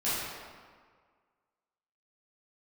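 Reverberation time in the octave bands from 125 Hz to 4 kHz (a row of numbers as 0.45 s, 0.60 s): 1.6 s, 1.7 s, 1.7 s, 1.8 s, 1.5 s, 1.1 s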